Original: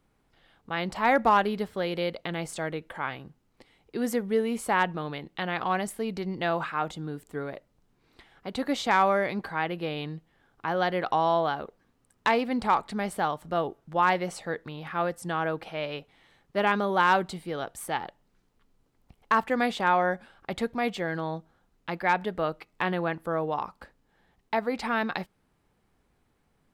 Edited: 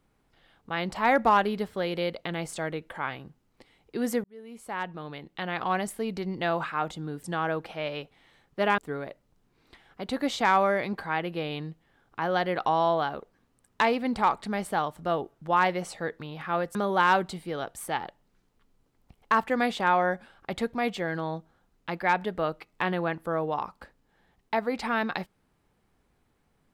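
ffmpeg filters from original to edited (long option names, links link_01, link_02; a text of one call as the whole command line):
ffmpeg -i in.wav -filter_complex "[0:a]asplit=5[link_01][link_02][link_03][link_04][link_05];[link_01]atrim=end=4.24,asetpts=PTS-STARTPTS,afade=type=out:start_time=4.236:duration=0.004:curve=hsin[link_06];[link_02]atrim=start=4.24:end=7.242,asetpts=PTS-STARTPTS,afade=type=in:duration=1.5[link_07];[link_03]atrim=start=15.208:end=16.752[link_08];[link_04]atrim=start=7.238:end=15.212[link_09];[link_05]atrim=start=16.748[link_10];[link_06][link_07]concat=n=2:v=0:a=1[link_11];[link_11][link_08]acrossfade=duration=0.004:curve1=hsin:curve2=hsin[link_12];[link_12][link_09]acrossfade=duration=0.004:curve1=hsin:curve2=hsin[link_13];[link_13][link_10]acrossfade=duration=0.004:curve1=hsin:curve2=hsin" out.wav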